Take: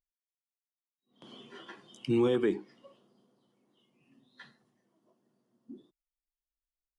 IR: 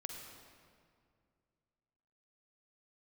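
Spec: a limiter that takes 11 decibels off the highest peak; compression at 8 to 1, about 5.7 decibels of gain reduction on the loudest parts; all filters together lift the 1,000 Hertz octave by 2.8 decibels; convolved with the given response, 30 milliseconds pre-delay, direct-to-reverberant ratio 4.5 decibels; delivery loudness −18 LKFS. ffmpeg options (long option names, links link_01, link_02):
-filter_complex "[0:a]equalizer=frequency=1000:width_type=o:gain=3.5,acompressor=threshold=-28dB:ratio=8,alimiter=level_in=9dB:limit=-24dB:level=0:latency=1,volume=-9dB,asplit=2[link_01][link_02];[1:a]atrim=start_sample=2205,adelay=30[link_03];[link_02][link_03]afir=irnorm=-1:irlink=0,volume=-2.5dB[link_04];[link_01][link_04]amix=inputs=2:normalize=0,volume=27dB"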